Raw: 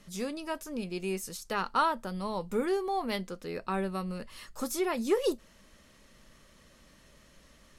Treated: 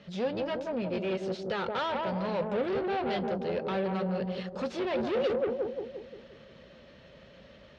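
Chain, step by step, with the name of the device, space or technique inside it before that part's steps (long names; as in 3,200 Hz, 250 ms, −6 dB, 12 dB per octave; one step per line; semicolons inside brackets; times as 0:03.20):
analogue delay pedal into a guitar amplifier (bucket-brigade delay 173 ms, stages 1,024, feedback 50%, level −4.5 dB; tube saturation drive 36 dB, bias 0.5; loudspeaker in its box 83–3,900 Hz, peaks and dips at 300 Hz −6 dB, 540 Hz +6 dB, 1,100 Hz −7 dB, 2,000 Hz −3 dB)
level +8.5 dB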